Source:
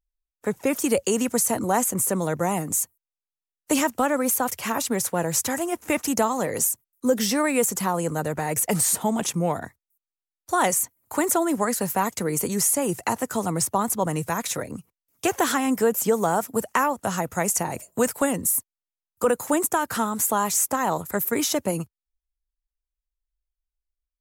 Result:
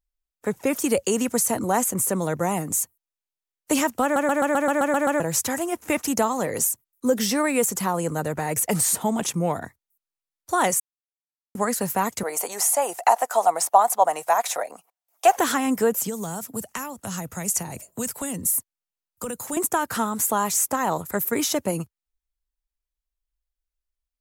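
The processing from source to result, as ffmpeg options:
ffmpeg -i in.wav -filter_complex "[0:a]asettb=1/sr,asplit=3[link_01][link_02][link_03];[link_01]atrim=end=12.234[link_04];[link_02]atrim=start=12.23:end=15.37,asetpts=PTS-STARTPTS,afade=type=in:duration=0.004:curve=qsin,afade=type=out:start_time=3.136:duration=0.004:curve=qsin,highpass=frequency=720:width_type=q:width=5.1[link_05];[link_03]atrim=start=15.366[link_06];[link_04][link_05]acrossfade=duration=0.004:curve1=hsin:curve2=qsin[link_07];[link_07][link_06]acrossfade=duration=0.004:curve1=qsin:curve2=hsin,asettb=1/sr,asplit=3[link_08][link_09][link_10];[link_08]atrim=end=15.944[link_11];[link_09]atrim=start=15.94:end=19.57,asetpts=PTS-STARTPTS,afade=type=in:duration=0.004:curve=qsin,afade=type=out:start_time=3.626:duration=0.004:curve=qsin,acrossover=split=210|3000[link_12][link_13][link_14];[link_13]acompressor=threshold=-38dB:ratio=2.5:attack=3.2:release=140:knee=2.83:detection=peak[link_15];[link_12][link_15][link_14]amix=inputs=3:normalize=0[link_16];[link_10]atrim=start=19.566[link_17];[link_11][link_16]acrossfade=duration=0.004:curve1=hsin:curve2=qsin[link_18];[link_18][link_17]acrossfade=duration=0.004:curve1=qsin:curve2=hsin,asplit=12[link_19][link_20][link_21][link_22][link_23][link_24][link_25][link_26][link_27][link_28][link_29][link_30];[link_19]atrim=end=4.162[link_31];[link_20]atrim=start=4.028:end=4.162[link_32];[link_21]atrim=start=4.028:end=4.162[link_33];[link_22]atrim=start=4.028:end=4.162[link_34];[link_23]atrim=start=4.028:end=4.162[link_35];[link_24]atrim=start=4.028:end=4.162[link_36];[link_25]atrim=start=4.028:end=4.162[link_37];[link_26]atrim=start=4.028:end=4.162[link_38];[link_27]atrim=start=4.028:end=4.162[link_39];[link_28]atrim=start=5.198:end=10.8,asetpts=PTS-STARTPTS,afade=type=out:start_time=5.598:duration=0.004:curve=hsin[link_40];[link_29]atrim=start=10.8:end=11.55,asetpts=PTS-STARTPTS,volume=0[link_41];[link_30]atrim=start=11.55,asetpts=PTS-STARTPTS,afade=type=in:duration=0.004:curve=hsin[link_42];[link_31][link_32]acrossfade=duration=0.004:curve1=hsin:curve2=hsin[link_43];[link_43][link_33]acrossfade=duration=0.004:curve1=hsin:curve2=hsin[link_44];[link_44][link_34]acrossfade=duration=0.004:curve1=hsin:curve2=hsin[link_45];[link_45][link_35]acrossfade=duration=0.004:curve1=hsin:curve2=hsin[link_46];[link_46][link_36]acrossfade=duration=0.004:curve1=hsin:curve2=hsin[link_47];[link_47][link_37]acrossfade=duration=0.004:curve1=hsin:curve2=hsin[link_48];[link_48][link_38]acrossfade=duration=0.004:curve1=hsin:curve2=hsin[link_49];[link_49][link_39]acrossfade=duration=0.004:curve1=hsin:curve2=hsin[link_50];[link_40][link_41][link_42]concat=n=3:v=0:a=1[link_51];[link_50][link_51]acrossfade=duration=0.004:curve1=hsin:curve2=hsin" out.wav

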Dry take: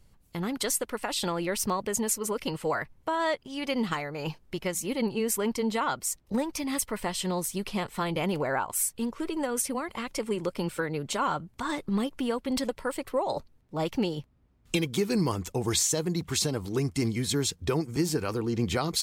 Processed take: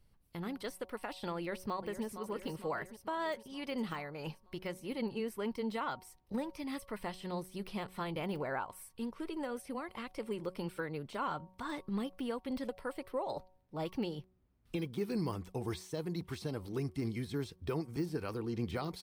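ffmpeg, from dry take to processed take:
ffmpeg -i in.wav -filter_complex "[0:a]asplit=2[link_01][link_02];[link_02]afade=type=in:start_time=1.36:duration=0.01,afade=type=out:start_time=2.04:duration=0.01,aecho=0:1:460|920|1380|1840|2300|2760|3220:0.334965|0.200979|0.120588|0.0723525|0.0434115|0.0260469|0.0156281[link_03];[link_01][link_03]amix=inputs=2:normalize=0,bandreject=frequency=185.8:width_type=h:width=4,bandreject=frequency=371.6:width_type=h:width=4,bandreject=frequency=557.4:width_type=h:width=4,bandreject=frequency=743.2:width_type=h:width=4,bandreject=frequency=929:width_type=h:width=4,bandreject=frequency=1114.8:width_type=h:width=4,deesser=1,equalizer=frequency=7000:width_type=o:width=0.28:gain=-12,volume=-8.5dB" out.wav

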